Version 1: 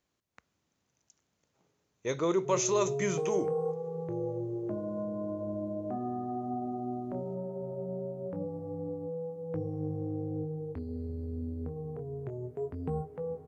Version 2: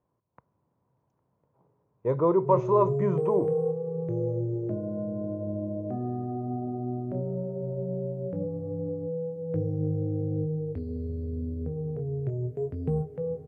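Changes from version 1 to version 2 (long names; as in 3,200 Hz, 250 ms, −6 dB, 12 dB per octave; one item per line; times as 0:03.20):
speech: add low-pass with resonance 990 Hz, resonance Q 9.7
master: add graphic EQ with 10 bands 125 Hz +11 dB, 500 Hz +6 dB, 1,000 Hz −9 dB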